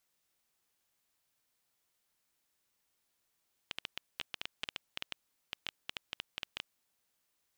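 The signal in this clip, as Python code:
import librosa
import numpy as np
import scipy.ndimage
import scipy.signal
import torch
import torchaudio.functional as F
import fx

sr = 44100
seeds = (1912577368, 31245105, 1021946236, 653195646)

y = fx.geiger_clicks(sr, seeds[0], length_s=3.06, per_s=8.9, level_db=-19.5)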